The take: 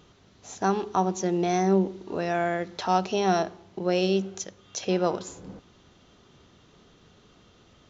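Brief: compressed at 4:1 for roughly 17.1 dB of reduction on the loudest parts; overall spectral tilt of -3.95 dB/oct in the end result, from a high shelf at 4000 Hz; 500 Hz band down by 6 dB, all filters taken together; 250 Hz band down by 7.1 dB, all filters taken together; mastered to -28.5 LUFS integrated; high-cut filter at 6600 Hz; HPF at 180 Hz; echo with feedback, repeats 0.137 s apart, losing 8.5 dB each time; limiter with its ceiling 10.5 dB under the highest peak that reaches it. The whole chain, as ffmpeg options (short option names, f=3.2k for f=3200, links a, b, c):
-af "highpass=180,lowpass=6.6k,equalizer=f=250:t=o:g=-7,equalizer=f=500:t=o:g=-5.5,highshelf=f=4k:g=-7,acompressor=threshold=-43dB:ratio=4,alimiter=level_in=13dB:limit=-24dB:level=0:latency=1,volume=-13dB,aecho=1:1:137|274|411|548:0.376|0.143|0.0543|0.0206,volume=20dB"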